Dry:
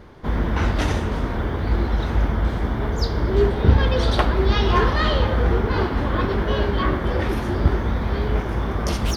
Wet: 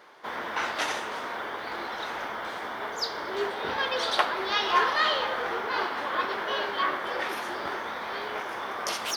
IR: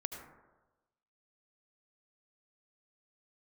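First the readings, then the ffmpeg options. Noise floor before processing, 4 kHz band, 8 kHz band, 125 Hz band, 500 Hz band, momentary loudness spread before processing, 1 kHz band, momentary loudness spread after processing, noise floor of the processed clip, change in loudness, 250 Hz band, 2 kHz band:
−26 dBFS, 0.0 dB, can't be measured, −34.5 dB, −9.0 dB, 6 LU, −1.5 dB, 10 LU, −36 dBFS, −7.5 dB, −17.5 dB, 0.0 dB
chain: -af "highpass=760"

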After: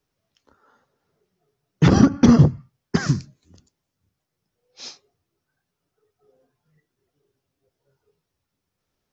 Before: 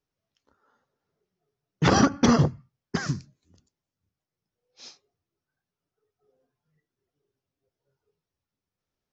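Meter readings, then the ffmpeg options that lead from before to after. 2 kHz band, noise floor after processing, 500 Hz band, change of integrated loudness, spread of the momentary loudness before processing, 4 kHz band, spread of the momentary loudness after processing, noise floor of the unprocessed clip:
0.0 dB, −81 dBFS, +2.5 dB, +6.0 dB, 13 LU, −0.5 dB, 12 LU, below −85 dBFS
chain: -filter_complex "[0:a]acrossover=split=350[link_01][link_02];[link_02]acompressor=threshold=-34dB:ratio=4[link_03];[link_01][link_03]amix=inputs=2:normalize=0,volume=8.5dB"

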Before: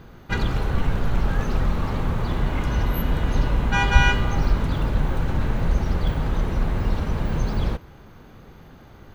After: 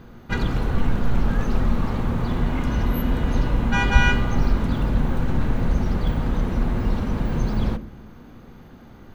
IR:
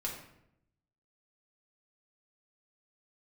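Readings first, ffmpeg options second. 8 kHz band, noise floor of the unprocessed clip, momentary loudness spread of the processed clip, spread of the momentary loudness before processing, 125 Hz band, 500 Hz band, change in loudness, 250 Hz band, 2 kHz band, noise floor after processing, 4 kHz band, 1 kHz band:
−1.5 dB, −46 dBFS, 5 LU, 6 LU, 0.0 dB, +0.5 dB, +0.5 dB, +4.0 dB, −0.5 dB, −45 dBFS, −2.0 dB, −1.0 dB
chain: -filter_complex "[0:a]asplit=2[link_01][link_02];[link_02]equalizer=frequency=250:width_type=o:width=0.88:gain=15[link_03];[1:a]atrim=start_sample=2205,lowpass=2300[link_04];[link_03][link_04]afir=irnorm=-1:irlink=0,volume=-13dB[link_05];[link_01][link_05]amix=inputs=2:normalize=0,volume=-1.5dB"

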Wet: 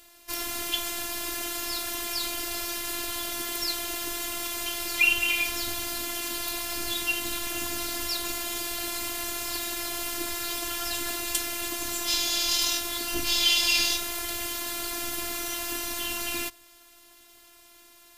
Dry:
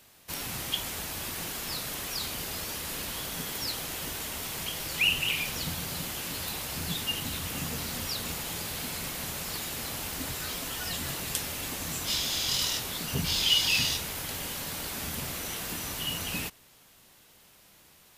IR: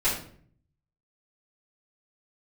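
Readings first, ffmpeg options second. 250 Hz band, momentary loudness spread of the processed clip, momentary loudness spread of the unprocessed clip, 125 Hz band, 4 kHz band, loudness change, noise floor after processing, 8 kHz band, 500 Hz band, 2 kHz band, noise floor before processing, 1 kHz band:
+1.5 dB, 8 LU, 8 LU, −11.0 dB, +2.0 dB, +3.0 dB, −55 dBFS, +3.5 dB, +4.0 dB, +4.0 dB, −58 dBFS, +3.5 dB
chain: -af "afftfilt=real='hypot(re,im)*cos(PI*b)':imag='0':win_size=512:overlap=0.75,volume=7dB"

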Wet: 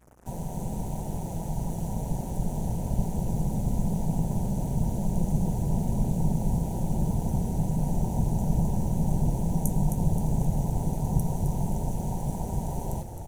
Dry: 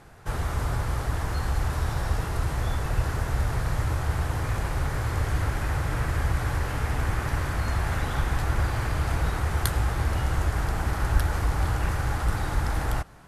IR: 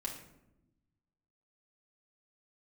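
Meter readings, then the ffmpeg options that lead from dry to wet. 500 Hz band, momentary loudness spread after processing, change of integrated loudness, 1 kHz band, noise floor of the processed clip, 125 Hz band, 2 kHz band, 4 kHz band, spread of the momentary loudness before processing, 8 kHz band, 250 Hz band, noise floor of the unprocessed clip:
−1.5 dB, 7 LU, −1.0 dB, −6.0 dB, −35 dBFS, −0.5 dB, below −25 dB, below −10 dB, 2 LU, −1.5 dB, +8.0 dB, −31 dBFS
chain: -filter_complex "[0:a]afftfilt=real='re*(1-between(b*sr/4096,920,5700))':imag='im*(1-between(b*sr/4096,920,5700))':win_size=4096:overlap=0.75,lowshelf=frequency=69:gain=-4.5,acrossover=split=260|970[link_01][link_02][link_03];[link_01]dynaudnorm=framelen=580:gausssize=11:maxgain=5.5dB[link_04];[link_04][link_02][link_03]amix=inputs=3:normalize=0,aeval=exprs='val(0)*sin(2*PI*89*n/s)':channel_layout=same,acrusher=bits=7:mix=0:aa=0.5,aeval=exprs='val(0)+0.001*(sin(2*PI*60*n/s)+sin(2*PI*2*60*n/s)/2+sin(2*PI*3*60*n/s)/3+sin(2*PI*4*60*n/s)/4+sin(2*PI*5*60*n/s)/5)':channel_layout=same,asplit=2[link_05][link_06];[link_06]asplit=5[link_07][link_08][link_09][link_10][link_11];[link_07]adelay=263,afreqshift=-49,volume=-7dB[link_12];[link_08]adelay=526,afreqshift=-98,volume=-14.1dB[link_13];[link_09]adelay=789,afreqshift=-147,volume=-21.3dB[link_14];[link_10]adelay=1052,afreqshift=-196,volume=-28.4dB[link_15];[link_11]adelay=1315,afreqshift=-245,volume=-35.5dB[link_16];[link_12][link_13][link_14][link_15][link_16]amix=inputs=5:normalize=0[link_17];[link_05][link_17]amix=inputs=2:normalize=0"

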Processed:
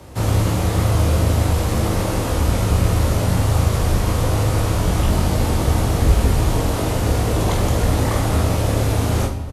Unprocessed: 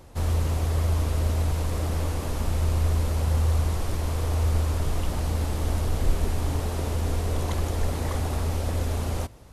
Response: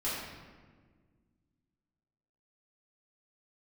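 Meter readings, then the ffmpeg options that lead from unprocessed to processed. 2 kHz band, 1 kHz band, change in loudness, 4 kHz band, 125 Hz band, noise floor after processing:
+10.5 dB, +10.5 dB, +8.0 dB, +10.0 dB, +7.5 dB, −22 dBFS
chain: -filter_complex "[0:a]aecho=1:1:20|45|76.25|115.3|164.1:0.631|0.398|0.251|0.158|0.1,afreqshift=24,asplit=2[link_01][link_02];[1:a]atrim=start_sample=2205[link_03];[link_02][link_03]afir=irnorm=-1:irlink=0,volume=-13dB[link_04];[link_01][link_04]amix=inputs=2:normalize=0,volume=6.5dB"

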